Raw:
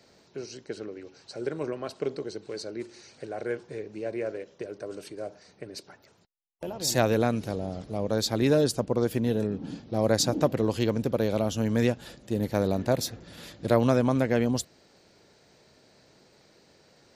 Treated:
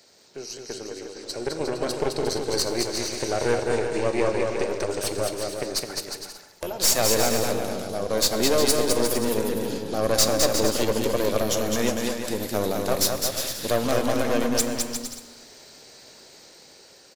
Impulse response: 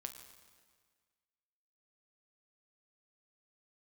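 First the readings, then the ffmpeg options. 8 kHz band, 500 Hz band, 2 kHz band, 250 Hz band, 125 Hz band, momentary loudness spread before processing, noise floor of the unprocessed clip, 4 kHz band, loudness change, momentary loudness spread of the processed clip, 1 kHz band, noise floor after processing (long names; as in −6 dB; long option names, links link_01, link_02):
+11.5 dB, +4.0 dB, +6.0 dB, 0.0 dB, −3.5 dB, 17 LU, −61 dBFS, +9.5 dB, +3.5 dB, 15 LU, +5.5 dB, −50 dBFS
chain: -filter_complex "[0:a]dynaudnorm=framelen=770:gausssize=5:maxgain=13dB,highshelf=frequency=4500:gain=9.5,asplit=2[link_01][link_02];[link_02]acompressor=threshold=-28dB:ratio=6,volume=1.5dB[link_03];[link_01][link_03]amix=inputs=2:normalize=0,bass=frequency=250:gain=-8,treble=frequency=4000:gain=3,aeval=exprs='(tanh(4.47*val(0)+0.75)-tanh(0.75))/4.47':channel_layout=same,aecho=1:1:210|357|459.9|531.9|582.4:0.631|0.398|0.251|0.158|0.1,asplit=2[link_04][link_05];[1:a]atrim=start_sample=2205,asetrate=52920,aresample=44100[link_06];[link_05][link_06]afir=irnorm=-1:irlink=0,volume=7dB[link_07];[link_04][link_07]amix=inputs=2:normalize=0,volume=-9dB"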